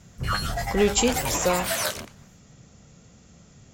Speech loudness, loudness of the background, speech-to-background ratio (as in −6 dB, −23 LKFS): −24.5 LKFS, −28.0 LKFS, 3.5 dB